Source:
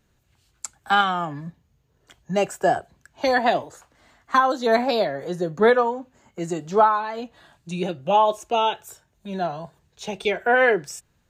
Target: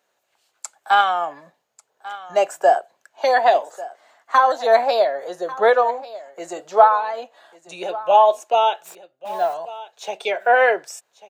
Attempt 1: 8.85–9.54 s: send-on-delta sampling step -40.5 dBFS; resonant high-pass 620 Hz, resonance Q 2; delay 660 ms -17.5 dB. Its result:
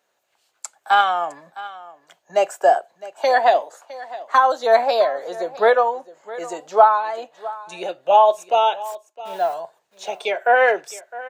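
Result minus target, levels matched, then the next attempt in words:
echo 483 ms early
8.85–9.54 s: send-on-delta sampling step -40.5 dBFS; resonant high-pass 620 Hz, resonance Q 2; delay 1143 ms -17.5 dB

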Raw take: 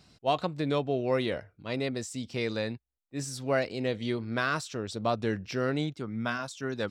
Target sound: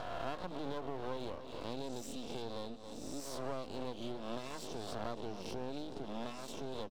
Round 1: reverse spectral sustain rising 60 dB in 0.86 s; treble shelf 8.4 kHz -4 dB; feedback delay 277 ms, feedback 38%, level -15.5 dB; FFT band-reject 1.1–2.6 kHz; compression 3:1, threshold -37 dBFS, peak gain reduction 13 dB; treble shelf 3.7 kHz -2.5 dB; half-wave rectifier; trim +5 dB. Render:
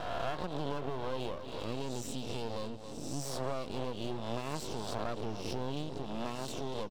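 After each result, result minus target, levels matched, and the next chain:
compression: peak gain reduction -5 dB; 125 Hz band +4.0 dB
reverse spectral sustain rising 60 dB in 0.86 s; treble shelf 8.4 kHz -4 dB; feedback delay 277 ms, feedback 38%, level -15.5 dB; FFT band-reject 1.1–2.6 kHz; compression 3:1, threshold -44.5 dBFS, peak gain reduction 18 dB; treble shelf 3.7 kHz -2.5 dB; half-wave rectifier; trim +5 dB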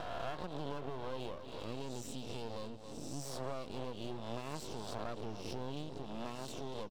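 125 Hz band +4.0 dB
reverse spectral sustain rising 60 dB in 0.86 s; Chebyshev high-pass 170 Hz, order 6; treble shelf 8.4 kHz -4 dB; feedback delay 277 ms, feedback 38%, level -15.5 dB; FFT band-reject 1.1–2.6 kHz; compression 3:1, threshold -44.5 dBFS, peak gain reduction 18 dB; treble shelf 3.7 kHz -2.5 dB; half-wave rectifier; trim +5 dB

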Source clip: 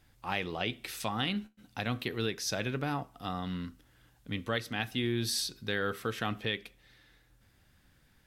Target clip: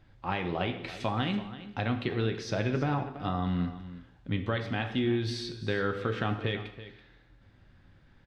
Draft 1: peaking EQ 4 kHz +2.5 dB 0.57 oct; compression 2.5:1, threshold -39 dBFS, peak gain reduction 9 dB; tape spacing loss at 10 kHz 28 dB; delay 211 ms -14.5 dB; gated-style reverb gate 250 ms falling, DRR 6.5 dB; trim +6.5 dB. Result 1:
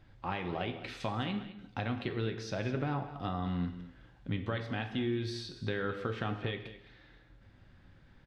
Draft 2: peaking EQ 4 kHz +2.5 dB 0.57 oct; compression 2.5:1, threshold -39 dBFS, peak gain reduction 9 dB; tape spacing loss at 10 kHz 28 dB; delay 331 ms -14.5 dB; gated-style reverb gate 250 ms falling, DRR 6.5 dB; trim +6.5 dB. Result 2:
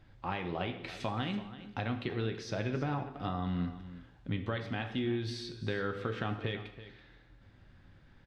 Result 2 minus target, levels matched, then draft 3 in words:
compression: peak gain reduction +5 dB
peaking EQ 4 kHz +2.5 dB 0.57 oct; compression 2.5:1, threshold -30.5 dBFS, peak gain reduction 4 dB; tape spacing loss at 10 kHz 28 dB; delay 331 ms -14.5 dB; gated-style reverb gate 250 ms falling, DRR 6.5 dB; trim +6.5 dB

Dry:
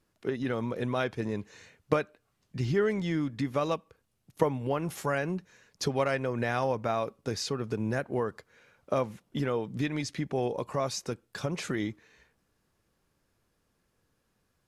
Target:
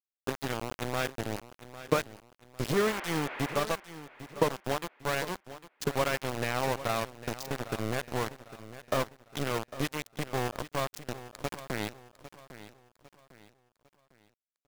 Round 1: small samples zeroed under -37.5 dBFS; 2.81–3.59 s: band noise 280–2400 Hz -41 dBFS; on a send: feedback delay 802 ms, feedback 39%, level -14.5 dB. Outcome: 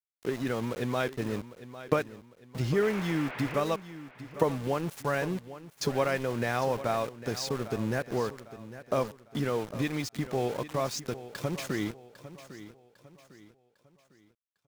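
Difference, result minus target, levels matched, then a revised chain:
small samples zeroed: distortion -14 dB
small samples zeroed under -26.5 dBFS; 2.81–3.59 s: band noise 280–2400 Hz -41 dBFS; on a send: feedback delay 802 ms, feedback 39%, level -14.5 dB

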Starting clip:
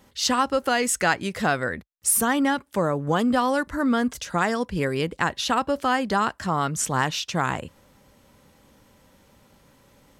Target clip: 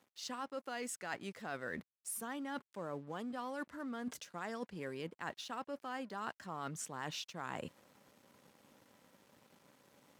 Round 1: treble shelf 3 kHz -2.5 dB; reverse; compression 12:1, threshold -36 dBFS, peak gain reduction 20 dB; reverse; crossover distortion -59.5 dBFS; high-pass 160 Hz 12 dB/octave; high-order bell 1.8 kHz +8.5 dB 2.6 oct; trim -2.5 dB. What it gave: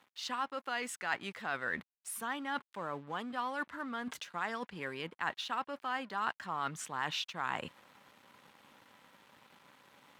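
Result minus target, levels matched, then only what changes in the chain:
2 kHz band +3.0 dB
remove: high-order bell 1.8 kHz +8.5 dB 2.6 oct

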